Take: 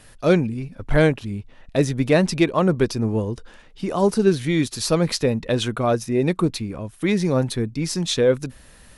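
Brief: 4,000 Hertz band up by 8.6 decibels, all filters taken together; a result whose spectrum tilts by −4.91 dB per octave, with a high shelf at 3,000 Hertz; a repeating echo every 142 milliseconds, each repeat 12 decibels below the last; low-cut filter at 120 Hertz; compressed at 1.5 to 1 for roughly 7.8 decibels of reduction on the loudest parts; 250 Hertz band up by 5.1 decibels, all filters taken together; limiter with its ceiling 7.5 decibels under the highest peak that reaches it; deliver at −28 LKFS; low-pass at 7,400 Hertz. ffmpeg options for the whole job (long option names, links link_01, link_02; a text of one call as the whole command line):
ffmpeg -i in.wav -af "highpass=120,lowpass=7400,equalizer=frequency=250:width_type=o:gain=7.5,highshelf=frequency=3000:gain=8,equalizer=frequency=4000:width_type=o:gain=4.5,acompressor=threshold=-31dB:ratio=1.5,alimiter=limit=-14.5dB:level=0:latency=1,aecho=1:1:142|284|426:0.251|0.0628|0.0157,volume=-2.5dB" out.wav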